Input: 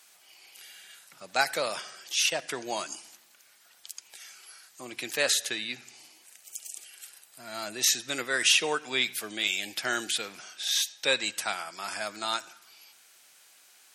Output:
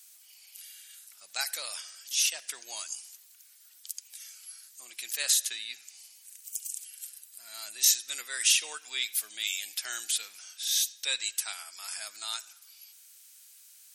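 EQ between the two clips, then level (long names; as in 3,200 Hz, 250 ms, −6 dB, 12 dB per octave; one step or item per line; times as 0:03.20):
first difference
+3.0 dB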